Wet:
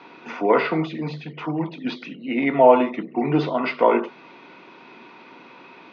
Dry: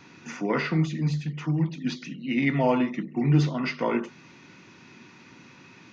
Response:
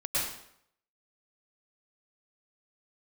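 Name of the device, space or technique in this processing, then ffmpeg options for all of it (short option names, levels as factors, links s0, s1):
phone earpiece: -filter_complex "[0:a]asettb=1/sr,asplit=3[s0][s1][s2];[s0]atrim=end=2.154[s3];[s1]atrim=start=2.15:end=2.73,asetpts=PTS-STARTPTS,afade=t=in:d=0.004:c=qsin,afade=t=out:st=0.576:d=0.004:c=qsin,highshelf=f=3400:g=-9[s4];[s2]atrim=start=2.726[s5];[s3][s4]acrossfade=d=0.004:c1=hsin:c2=qsin[s6];[s6][s5]acrossfade=d=0.004:c1=qsin:c2=hsin,highpass=340,equalizer=f=450:t=q:w=4:g=5,equalizer=f=670:t=q:w=4:g=6,equalizer=f=950:t=q:w=4:g=4,equalizer=f=1800:t=q:w=4:g=-7,equalizer=f=2800:t=q:w=4:g=-3,lowpass=f=3600:w=0.5412,lowpass=f=3600:w=1.3066,volume=2.37"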